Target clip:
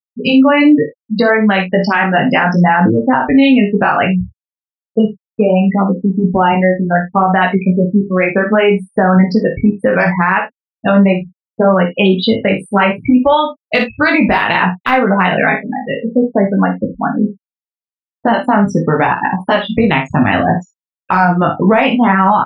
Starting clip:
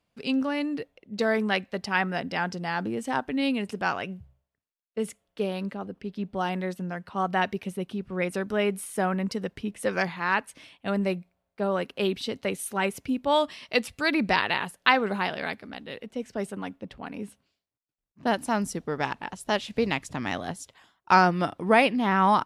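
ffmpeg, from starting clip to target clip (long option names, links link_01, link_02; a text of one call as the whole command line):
ffmpeg -i in.wav -filter_complex "[0:a]asettb=1/sr,asplit=3[link_01][link_02][link_03];[link_01]atrim=end=6.524[link_04];[link_02]atrim=start=6.52:end=9.17,asetpts=PTS-STARTPTS,afade=type=in:duration=0.004:curve=qsin,afade=type=out:start_time=2.646:duration=0.004:curve=qsin,highpass=frequency=180:poles=1[link_05];[link_03]atrim=start=9.166[link_06];[link_04][link_05]acrossfade=duration=0.004:curve1=hsin:curve2=qsin[link_07];[link_07][link_06]acrossfade=duration=0.004:curve1=qsin:curve2=hsin,anlmdn=0.251,afftfilt=real='re*gte(hypot(re,im),0.0355)':imag='im*gte(hypot(re,im),0.0355)':win_size=1024:overlap=0.75,lowpass=3700,aemphasis=mode=reproduction:type=50fm,deesser=0.75,equalizer=frequency=380:width_type=o:width=0.85:gain=-6,acompressor=threshold=-29dB:ratio=8,flanger=delay=15.5:depth=4.4:speed=0.67,asplit=2[link_08][link_09];[link_09]adelay=27,volume=-11dB[link_10];[link_08][link_10]amix=inputs=2:normalize=0,aecho=1:1:44|56:0.224|0.282,alimiter=level_in=28dB:limit=-1dB:release=50:level=0:latency=1,volume=-1dB" out.wav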